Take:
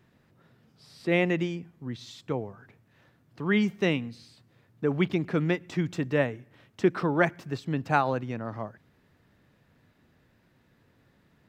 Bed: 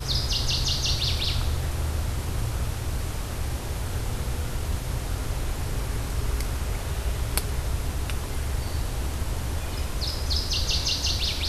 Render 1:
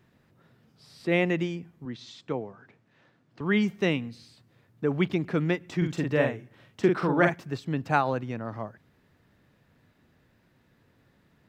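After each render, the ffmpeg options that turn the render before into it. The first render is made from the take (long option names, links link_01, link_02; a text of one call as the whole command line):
ffmpeg -i in.wav -filter_complex "[0:a]asettb=1/sr,asplit=3[link_01][link_02][link_03];[link_01]atrim=end=1.854[link_04];[link_02]atrim=start=1.85:end=3.41,asetpts=PTS-STARTPTS,afade=type=in:duration=0.004:curve=qsin,afade=type=out:start_time=1.556:duration=0.004:curve=qsin,highpass=150,lowpass=6300[link_05];[link_03]atrim=start=3.406[link_06];[link_04][link_05]acrossfade=duration=0.004:curve1=hsin:curve2=qsin[link_07];[link_07][link_06]acrossfade=duration=0.004:curve1=qsin:curve2=hsin,asettb=1/sr,asplit=3[link_08][link_09][link_10];[link_08]atrim=end=5.774[link_11];[link_09]atrim=start=5.77:end=7.35,asetpts=PTS-STARTPTS,afade=type=in:duration=0.004:curve=qsin,afade=type=out:start_time=1.576:duration=0.004:curve=qsin,asplit=2[link_12][link_13];[link_13]adelay=46,volume=-4dB[link_14];[link_12][link_14]amix=inputs=2:normalize=0,atrim=end_sample=69678[link_15];[link_10]atrim=start=7.346[link_16];[link_11][link_15]acrossfade=duration=0.004:curve1=hsin:curve2=qsin[link_17];[link_17][link_16]acrossfade=duration=0.004:curve1=qsin:curve2=hsin" out.wav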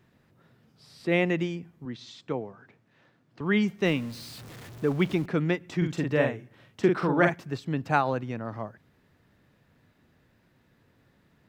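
ffmpeg -i in.wav -filter_complex "[0:a]asettb=1/sr,asplit=3[link_01][link_02][link_03];[link_01]atrim=end=3.854[link_04];[link_02]atrim=start=3.85:end=5.26,asetpts=PTS-STARTPTS,afade=type=in:duration=0.004:curve=qsin,afade=type=out:start_time=1.406:duration=0.004:curve=qsin,aeval=exprs='val(0)+0.5*0.0106*sgn(val(0))':channel_layout=same[link_05];[link_03]atrim=start=5.256[link_06];[link_04][link_05]acrossfade=duration=0.004:curve1=hsin:curve2=qsin[link_07];[link_07][link_06]acrossfade=duration=0.004:curve1=qsin:curve2=hsin" out.wav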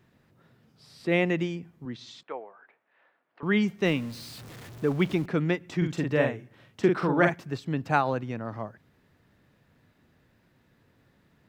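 ffmpeg -i in.wav -filter_complex "[0:a]asettb=1/sr,asplit=3[link_01][link_02][link_03];[link_01]atrim=end=2.234[link_04];[link_02]atrim=start=2.23:end=3.43,asetpts=PTS-STARTPTS,afade=type=in:duration=0.004:curve=qsin,afade=type=out:start_time=1.196:duration=0.004:curve=qsin,asuperpass=centerf=1200:order=4:qfactor=0.6[link_05];[link_03]atrim=start=3.426[link_06];[link_04][link_05]acrossfade=duration=0.004:curve1=hsin:curve2=qsin[link_07];[link_07][link_06]acrossfade=duration=0.004:curve1=qsin:curve2=hsin" out.wav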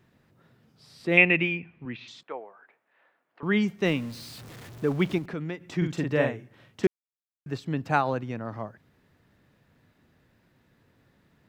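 ffmpeg -i in.wav -filter_complex "[0:a]asettb=1/sr,asplit=3[link_01][link_02][link_03];[link_01]atrim=end=1.174[link_04];[link_02]atrim=start=1.17:end=2.08,asetpts=PTS-STARTPTS,afade=type=in:duration=0.004:curve=qsin,afade=type=out:start_time=0.906:duration=0.004:curve=qsin,lowpass=frequency=2500:width_type=q:width=9.6[link_05];[link_03]atrim=start=2.076[link_06];[link_04][link_05]acrossfade=duration=0.004:curve1=hsin:curve2=qsin[link_07];[link_07][link_06]acrossfade=duration=0.004:curve1=qsin:curve2=hsin,asettb=1/sr,asplit=3[link_08][link_09][link_10];[link_08]atrim=end=5.184[link_11];[link_09]atrim=start=5.18:end=5.77,asetpts=PTS-STARTPTS,afade=type=in:duration=0.004:curve=qsin,afade=type=out:start_time=0.586:duration=0.004:curve=qsin,acompressor=threshold=-35dB:ratio=2:attack=3.2:release=140:knee=1:detection=peak[link_12];[link_10]atrim=start=5.766[link_13];[link_11][link_12]acrossfade=duration=0.004:curve1=hsin:curve2=qsin[link_14];[link_14][link_13]acrossfade=duration=0.004:curve1=qsin:curve2=hsin,asplit=3[link_15][link_16][link_17];[link_15]atrim=end=6.87,asetpts=PTS-STARTPTS,afade=type=out:start_time=6.866:duration=0.004:curve=hsin[link_18];[link_16]atrim=start=6.87:end=7.46,asetpts=PTS-STARTPTS,volume=0[link_19];[link_17]atrim=start=7.46,asetpts=PTS-STARTPTS,afade=type=in:duration=0.004:curve=hsin[link_20];[link_18][link_19][link_20]concat=n=3:v=0:a=1" out.wav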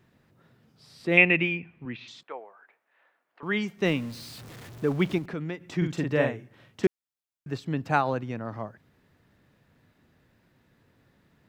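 ffmpeg -i in.wav -filter_complex "[0:a]asettb=1/sr,asplit=3[link_01][link_02][link_03];[link_01]atrim=end=2.254[link_04];[link_02]atrim=start=2.25:end=3.77,asetpts=PTS-STARTPTS,afade=type=in:duration=0.004:curve=qsin,afade=type=out:start_time=1.516:duration=0.004:curve=qsin,lowshelf=frequency=330:gain=-8.5[link_05];[link_03]atrim=start=3.766[link_06];[link_04][link_05]acrossfade=duration=0.004:curve1=hsin:curve2=qsin[link_07];[link_07][link_06]acrossfade=duration=0.004:curve1=qsin:curve2=hsin" out.wav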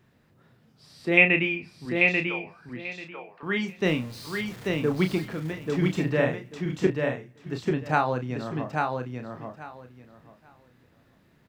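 ffmpeg -i in.wav -filter_complex "[0:a]asplit=2[link_01][link_02];[link_02]adelay=32,volume=-7.5dB[link_03];[link_01][link_03]amix=inputs=2:normalize=0,aecho=1:1:839|1678|2517:0.668|0.12|0.0217" out.wav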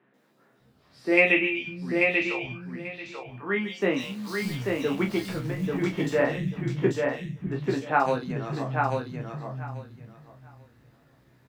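ffmpeg -i in.wav -filter_complex "[0:a]asplit=2[link_01][link_02];[link_02]adelay=15,volume=-4dB[link_03];[link_01][link_03]amix=inputs=2:normalize=0,acrossover=split=190|2800[link_04][link_05][link_06];[link_06]adelay=140[link_07];[link_04]adelay=600[link_08];[link_08][link_05][link_07]amix=inputs=3:normalize=0" out.wav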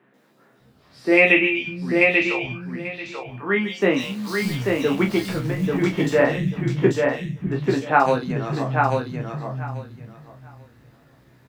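ffmpeg -i in.wav -af "volume=6dB,alimiter=limit=-3dB:level=0:latency=1" out.wav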